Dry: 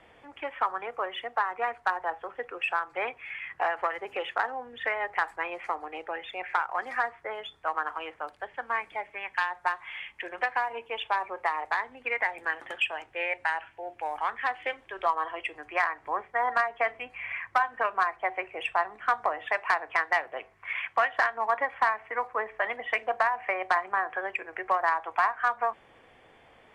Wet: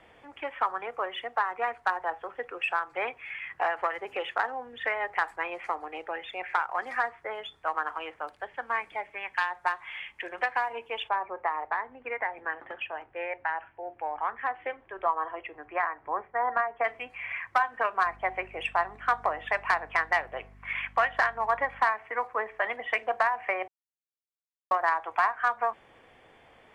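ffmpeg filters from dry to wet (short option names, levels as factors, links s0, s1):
-filter_complex "[0:a]asplit=3[s0][s1][s2];[s0]afade=t=out:st=11.08:d=0.02[s3];[s1]lowpass=1600,afade=t=in:st=11.08:d=0.02,afade=t=out:st=16.83:d=0.02[s4];[s2]afade=t=in:st=16.83:d=0.02[s5];[s3][s4][s5]amix=inputs=3:normalize=0,asettb=1/sr,asplit=3[s6][s7][s8];[s6]atrim=end=18.054[s9];[s7]atrim=start=18.05:end=21.81,asetpts=PTS-STARTPTS,afade=t=in:d=0.004:c=qsin,afade=t=out:st=3.756:d=0.004:c=qsin,aeval=exprs='val(0)+0.00251*(sin(2*PI*50*n/s)+sin(2*PI*2*50*n/s)/2+sin(2*PI*3*50*n/s)/3+sin(2*PI*4*50*n/s)/4+sin(2*PI*5*50*n/s)/5)':c=same[s10];[s8]atrim=start=21.806[s11];[s9][s10]acrossfade=d=0.004:c1=hsin:c2=qsin[s12];[s12][s11]acrossfade=d=0.004:c1=qsin:c2=hsin,asplit=3[s13][s14][s15];[s13]atrim=end=23.68,asetpts=PTS-STARTPTS,afade=t=out:st=23.676:d=0.004:c=hsin[s16];[s14]atrim=start=23.68:end=24.71,asetpts=PTS-STARTPTS,volume=0[s17];[s15]atrim=start=24.71,asetpts=PTS-STARTPTS,afade=t=in:d=0.004:c=hsin[s18];[s16][s17][s18]concat=n=3:v=0:a=1"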